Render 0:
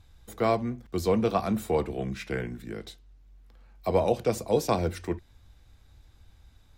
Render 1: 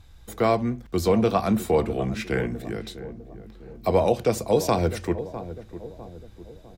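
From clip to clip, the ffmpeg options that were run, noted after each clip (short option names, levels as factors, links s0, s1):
-filter_complex "[0:a]asplit=2[s0][s1];[s1]adelay=652,lowpass=f=810:p=1,volume=0.224,asplit=2[s2][s3];[s3]adelay=652,lowpass=f=810:p=1,volume=0.51,asplit=2[s4][s5];[s5]adelay=652,lowpass=f=810:p=1,volume=0.51,asplit=2[s6][s7];[s7]adelay=652,lowpass=f=810:p=1,volume=0.51,asplit=2[s8][s9];[s9]adelay=652,lowpass=f=810:p=1,volume=0.51[s10];[s0][s2][s4][s6][s8][s10]amix=inputs=6:normalize=0,asplit=2[s11][s12];[s12]alimiter=limit=0.119:level=0:latency=1:release=132,volume=0.891[s13];[s11][s13]amix=inputs=2:normalize=0"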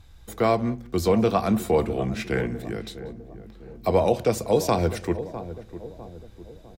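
-filter_complex "[0:a]asplit=2[s0][s1];[s1]adelay=186.6,volume=0.0891,highshelf=f=4000:g=-4.2[s2];[s0][s2]amix=inputs=2:normalize=0"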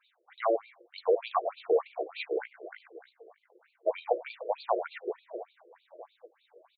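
-filter_complex "[0:a]asplit=2[s0][s1];[s1]adelay=14,volume=0.211[s2];[s0][s2]amix=inputs=2:normalize=0,afftfilt=real='re*between(b*sr/1024,440*pow(3300/440,0.5+0.5*sin(2*PI*3.3*pts/sr))/1.41,440*pow(3300/440,0.5+0.5*sin(2*PI*3.3*pts/sr))*1.41)':imag='im*between(b*sr/1024,440*pow(3300/440,0.5+0.5*sin(2*PI*3.3*pts/sr))/1.41,440*pow(3300/440,0.5+0.5*sin(2*PI*3.3*pts/sr))*1.41)':win_size=1024:overlap=0.75,volume=0.841"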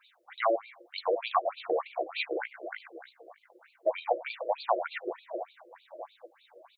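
-filter_complex "[0:a]equalizer=f=430:t=o:w=0.29:g=-15,asplit=2[s0][s1];[s1]acompressor=threshold=0.0126:ratio=6,volume=1.33[s2];[s0][s2]amix=inputs=2:normalize=0"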